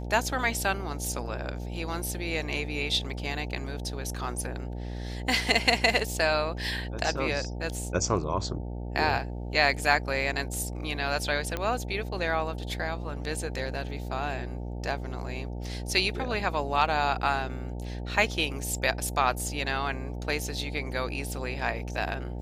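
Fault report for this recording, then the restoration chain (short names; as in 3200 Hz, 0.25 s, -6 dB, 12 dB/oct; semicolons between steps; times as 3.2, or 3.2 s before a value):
buzz 60 Hz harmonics 15 -35 dBFS
11.57 pop -16 dBFS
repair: de-click; de-hum 60 Hz, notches 15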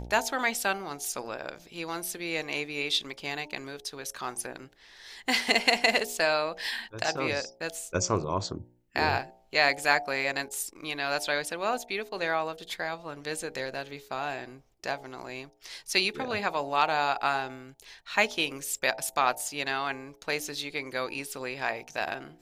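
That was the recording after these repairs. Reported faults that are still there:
11.57 pop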